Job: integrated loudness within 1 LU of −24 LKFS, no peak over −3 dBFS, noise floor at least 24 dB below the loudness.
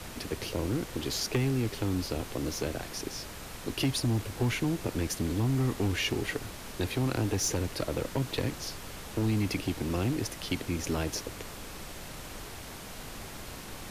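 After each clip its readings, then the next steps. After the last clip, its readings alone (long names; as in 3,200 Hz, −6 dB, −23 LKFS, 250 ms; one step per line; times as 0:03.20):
share of clipped samples 1.1%; peaks flattened at −21.5 dBFS; background noise floor −43 dBFS; target noise floor −57 dBFS; integrated loudness −32.5 LKFS; sample peak −21.5 dBFS; target loudness −24.0 LKFS
→ clipped peaks rebuilt −21.5 dBFS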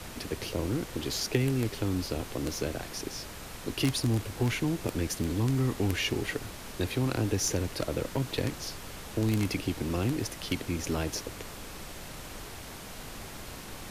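share of clipped samples 0.0%; background noise floor −43 dBFS; target noise floor −56 dBFS
→ noise reduction from a noise print 13 dB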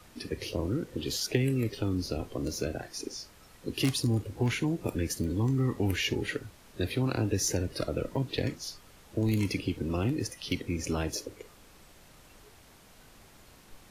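background noise floor −56 dBFS; integrated loudness −31.5 LKFS; sample peak −12.5 dBFS; target loudness −24.0 LKFS
→ level +7.5 dB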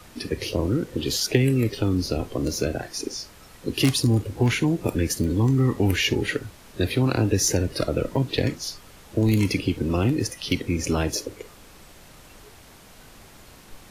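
integrated loudness −24.0 LKFS; sample peak −5.0 dBFS; background noise floor −49 dBFS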